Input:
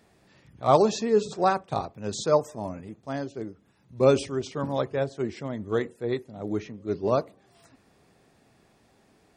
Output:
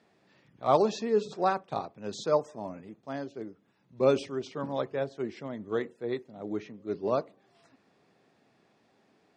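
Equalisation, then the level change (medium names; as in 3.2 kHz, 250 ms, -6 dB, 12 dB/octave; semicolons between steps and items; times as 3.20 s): band-pass 160–5300 Hz; -4.0 dB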